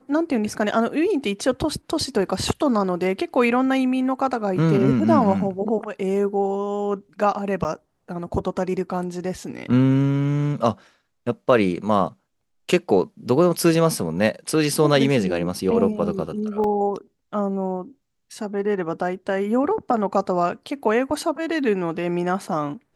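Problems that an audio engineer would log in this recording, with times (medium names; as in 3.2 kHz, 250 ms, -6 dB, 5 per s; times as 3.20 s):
7.64–7.65 s: dropout 8.9 ms
16.64 s: dropout 2.5 ms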